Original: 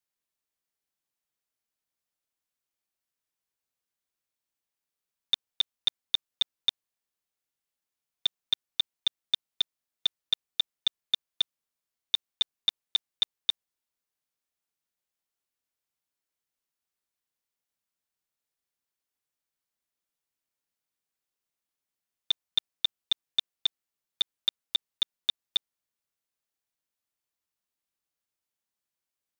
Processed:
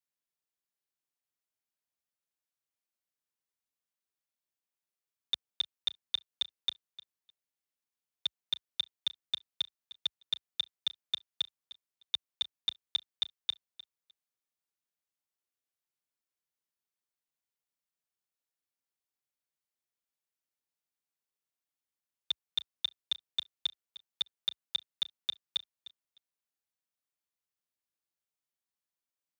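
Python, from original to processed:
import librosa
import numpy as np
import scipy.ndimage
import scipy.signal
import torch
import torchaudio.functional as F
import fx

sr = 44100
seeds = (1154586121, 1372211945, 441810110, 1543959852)

y = scipy.signal.sosfilt(scipy.signal.butter(4, 62.0, 'highpass', fs=sr, output='sos'), x)
y = fx.echo_feedback(y, sr, ms=304, feedback_pct=16, wet_db=-17)
y = y * librosa.db_to_amplitude(-6.0)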